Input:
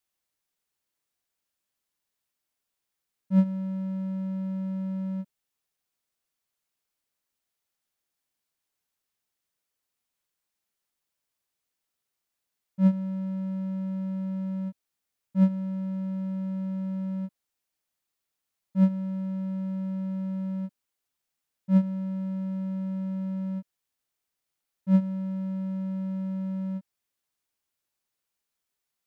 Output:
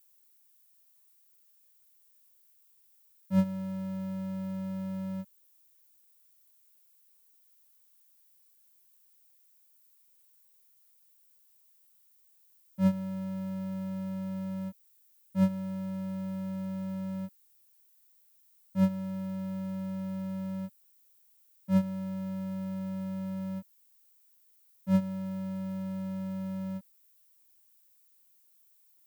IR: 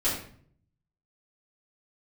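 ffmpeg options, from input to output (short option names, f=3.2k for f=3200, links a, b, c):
-filter_complex "[0:a]aemphasis=mode=production:type=bsi,asplit=2[a][b];[b]asetrate=22050,aresample=44100,atempo=2,volume=-17dB[c];[a][c]amix=inputs=2:normalize=0,volume=1.5dB"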